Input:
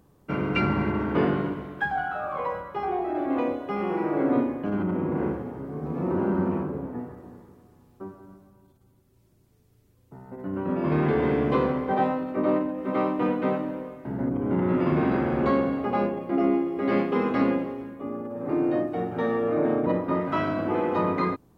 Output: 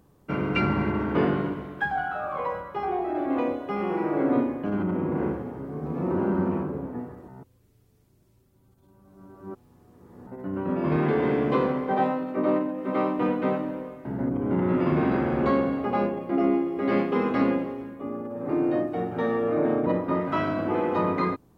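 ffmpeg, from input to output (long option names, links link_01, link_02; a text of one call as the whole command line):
ffmpeg -i in.wav -filter_complex "[0:a]asettb=1/sr,asplit=3[link_01][link_02][link_03];[link_01]atrim=end=10.964[link_04];[link_02]atrim=start=10.96:end=13.17,asetpts=PTS-STARTPTS,afade=type=in:duration=0.004:curve=qsin,afade=type=out:start_time=2.206:duration=0.004:curve=qsin,highpass=120[link_05];[link_03]atrim=start=13.166[link_06];[link_04][link_05]acrossfade=duration=0.004:curve1=hsin:curve2=qsin[link_07];[link_07][link_06]acrossfade=duration=0.004:curve1=qsin:curve2=hsin,asplit=3[link_08][link_09][link_10];[link_08]atrim=end=7.282[link_11];[link_09]atrim=start=7.278:end=10.272,asetpts=PTS-STARTPTS,areverse[link_12];[link_10]atrim=start=10.268[link_13];[link_11][link_12]acrossfade=duration=0.004:curve1=hsin:curve2=hsin[link_14];[link_14][link_13]acrossfade=duration=0.004:curve1=hsin:curve2=hsin" out.wav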